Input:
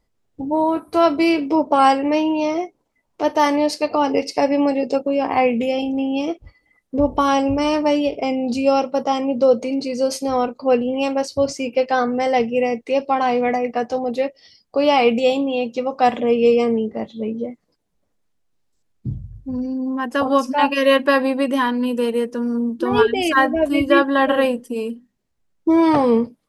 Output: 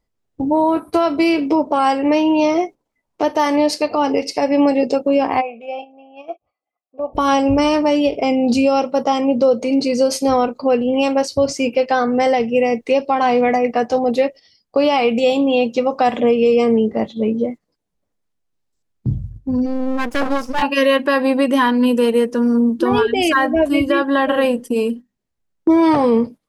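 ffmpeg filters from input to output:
ffmpeg -i in.wav -filter_complex "[0:a]asplit=3[link_01][link_02][link_03];[link_01]afade=type=out:start_time=5.4:duration=0.02[link_04];[link_02]asplit=3[link_05][link_06][link_07];[link_05]bandpass=frequency=730:width_type=q:width=8,volume=0dB[link_08];[link_06]bandpass=frequency=1090:width_type=q:width=8,volume=-6dB[link_09];[link_07]bandpass=frequency=2440:width_type=q:width=8,volume=-9dB[link_10];[link_08][link_09][link_10]amix=inputs=3:normalize=0,afade=type=in:start_time=5.4:duration=0.02,afade=type=out:start_time=7.13:duration=0.02[link_11];[link_03]afade=type=in:start_time=7.13:duration=0.02[link_12];[link_04][link_11][link_12]amix=inputs=3:normalize=0,asplit=3[link_13][link_14][link_15];[link_13]afade=type=out:start_time=19.65:duration=0.02[link_16];[link_14]aeval=exprs='max(val(0),0)':channel_layout=same,afade=type=in:start_time=19.65:duration=0.02,afade=type=out:start_time=20.61:duration=0.02[link_17];[link_15]afade=type=in:start_time=20.61:duration=0.02[link_18];[link_16][link_17][link_18]amix=inputs=3:normalize=0,agate=range=-11dB:threshold=-35dB:ratio=16:detection=peak,alimiter=limit=-13dB:level=0:latency=1:release=261,volume=6.5dB" out.wav

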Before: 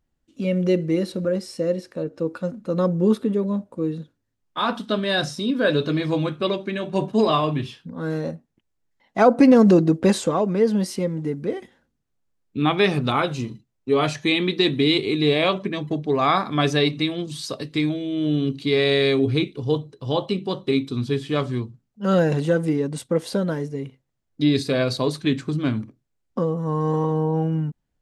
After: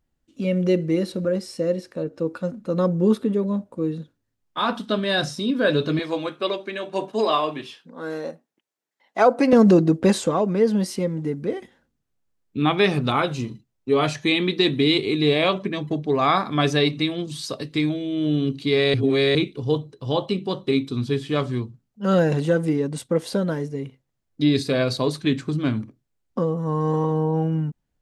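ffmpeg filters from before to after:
ffmpeg -i in.wav -filter_complex "[0:a]asettb=1/sr,asplit=3[link_01][link_02][link_03];[link_01]atrim=end=5.994[link_04];[link_02]atrim=start=5.99:end=9.53,asetpts=PTS-STARTPTS,afade=type=in:duration=0.004:curve=qsin,afade=type=out:start_time=3.536:duration=0.004:curve=qsin,highpass=370[link_05];[link_03]atrim=start=9.526[link_06];[link_04][link_05]acrossfade=duration=0.004:curve1=hsin:curve2=qsin[link_07];[link_07][link_06]acrossfade=duration=0.004:curve1=qsin:curve2=hsin,asplit=3[link_08][link_09][link_10];[link_08]atrim=end=18.942[link_11];[link_09]atrim=start=18.938:end=19.352,asetpts=PTS-STARTPTS,areverse[link_12];[link_10]atrim=start=19.348[link_13];[link_11][link_12]acrossfade=duration=0.004:curve1=hsin:curve2=hsin[link_14];[link_14][link_13]acrossfade=duration=0.004:curve1=hsin:curve2=hsin" out.wav

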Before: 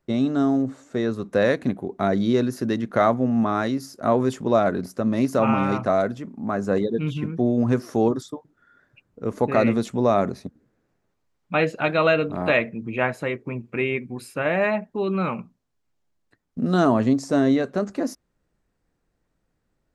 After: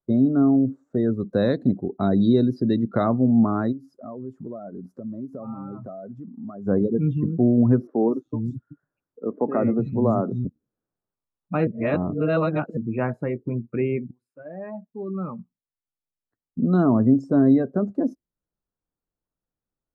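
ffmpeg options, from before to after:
ffmpeg -i in.wav -filter_complex "[0:a]asettb=1/sr,asplit=3[link_01][link_02][link_03];[link_01]atrim=end=1.204[link_04];[link_02]atrim=start=1.2:end=3.04,asetpts=PTS-STARTPTS,afade=type=in:duration=0.004:curve=qsin,afade=type=out:start_time=1.836:duration=0.004:curve=qsin,equalizer=frequency=4200:width=2:gain=11[link_05];[link_03]atrim=start=3.036[link_06];[link_04][link_05]acrossfade=duration=0.004:curve1=hsin:curve2=qsin[link_07];[link_07][link_06]acrossfade=duration=0.004:curve1=qsin:curve2=hsin,asplit=3[link_08][link_09][link_10];[link_08]afade=type=out:start_time=3.71:duration=0.02[link_11];[link_09]acompressor=threshold=-38dB:ratio=3:attack=3.2:release=140:knee=1:detection=peak,afade=type=in:start_time=3.71:duration=0.02,afade=type=out:start_time=6.65:duration=0.02[link_12];[link_10]afade=type=in:start_time=6.65:duration=0.02[link_13];[link_11][link_12][link_13]amix=inputs=3:normalize=0,asettb=1/sr,asplit=3[link_14][link_15][link_16];[link_14]atrim=end=7.874[link_17];[link_15]atrim=start=7.87:end=10.45,asetpts=PTS-STARTPTS,afade=type=in:duration=0.004:curve=qsin,afade=type=out:start_time=2.576:duration=0.004:curve=qsin,acrossover=split=200|2900[link_18][link_19][link_20];[link_20]adelay=260[link_21];[link_18]adelay=380[link_22];[link_22][link_19][link_21]amix=inputs=3:normalize=0,atrim=end_sample=113778[link_23];[link_16]atrim=start=10.446[link_24];[link_17][link_23]acrossfade=duration=0.004:curve1=hsin:curve2=qsin[link_25];[link_25][link_24]acrossfade=duration=0.004:curve1=qsin:curve2=hsin,asplit=4[link_26][link_27][link_28][link_29];[link_26]atrim=end=11.672[link_30];[link_27]atrim=start=11.668:end=12.772,asetpts=PTS-STARTPTS,areverse[link_31];[link_28]atrim=start=12.768:end=14.11,asetpts=PTS-STARTPTS,afade=type=out:start_time=1.338:duration=0.004:curve=hsin:silence=0.0749894[link_32];[link_29]atrim=start=14.11,asetpts=PTS-STARTPTS,afade=type=in:duration=3.23:silence=0.0749894[link_33];[link_30][link_31]acrossfade=duration=0.004:curve1=hsin:curve2=hsin[link_34];[link_32][link_33]concat=n=2:v=0:a=1[link_35];[link_34][link_35]acrossfade=duration=0.004:curve1=hsin:curve2=hsin,afftdn=noise_reduction=22:noise_floor=-31,highshelf=frequency=1800:width_type=q:width=1.5:gain=-11,acrossover=split=360|3000[link_36][link_37][link_38];[link_37]acompressor=threshold=-53dB:ratio=1.5[link_39];[link_36][link_39][link_38]amix=inputs=3:normalize=0,volume=4.5dB" out.wav

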